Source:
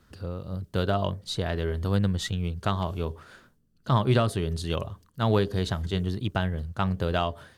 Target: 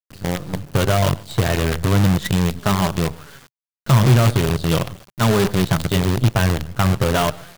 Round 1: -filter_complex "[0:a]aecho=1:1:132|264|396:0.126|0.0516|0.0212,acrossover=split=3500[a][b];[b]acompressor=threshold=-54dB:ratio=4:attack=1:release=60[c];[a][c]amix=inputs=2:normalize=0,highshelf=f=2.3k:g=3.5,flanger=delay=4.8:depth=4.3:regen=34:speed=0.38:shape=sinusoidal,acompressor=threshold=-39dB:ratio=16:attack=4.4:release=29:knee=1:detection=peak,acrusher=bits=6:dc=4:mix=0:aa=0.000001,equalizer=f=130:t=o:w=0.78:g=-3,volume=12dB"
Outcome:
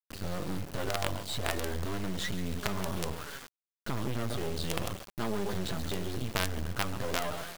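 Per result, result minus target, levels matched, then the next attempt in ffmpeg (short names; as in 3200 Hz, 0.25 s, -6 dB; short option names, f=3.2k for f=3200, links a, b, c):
compressor: peak gain reduction +11 dB; 125 Hz band -4.0 dB
-filter_complex "[0:a]aecho=1:1:132|264|396:0.126|0.0516|0.0212,acrossover=split=3500[a][b];[b]acompressor=threshold=-54dB:ratio=4:attack=1:release=60[c];[a][c]amix=inputs=2:normalize=0,highshelf=f=2.3k:g=3.5,flanger=delay=4.8:depth=4.3:regen=34:speed=0.38:shape=sinusoidal,acompressor=threshold=-27.5dB:ratio=16:attack=4.4:release=29:knee=1:detection=peak,acrusher=bits=6:dc=4:mix=0:aa=0.000001,equalizer=f=130:t=o:w=0.78:g=-3,volume=12dB"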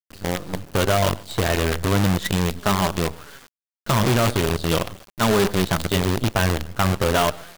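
125 Hz band -3.5 dB
-filter_complex "[0:a]aecho=1:1:132|264|396:0.126|0.0516|0.0212,acrossover=split=3500[a][b];[b]acompressor=threshold=-54dB:ratio=4:attack=1:release=60[c];[a][c]amix=inputs=2:normalize=0,highshelf=f=2.3k:g=3.5,flanger=delay=4.8:depth=4.3:regen=34:speed=0.38:shape=sinusoidal,acompressor=threshold=-27.5dB:ratio=16:attack=4.4:release=29:knee=1:detection=peak,acrusher=bits=6:dc=4:mix=0:aa=0.000001,equalizer=f=130:t=o:w=0.78:g=7.5,volume=12dB"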